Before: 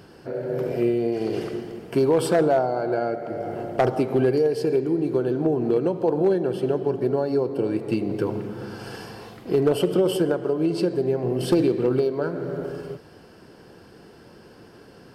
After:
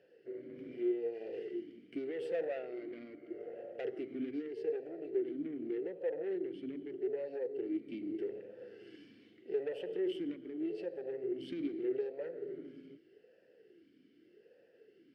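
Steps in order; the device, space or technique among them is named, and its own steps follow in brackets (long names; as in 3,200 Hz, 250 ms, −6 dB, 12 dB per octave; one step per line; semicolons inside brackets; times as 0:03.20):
talk box (tube saturation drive 22 dB, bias 0.7; formant filter swept between two vowels e-i 0.82 Hz)
level −2.5 dB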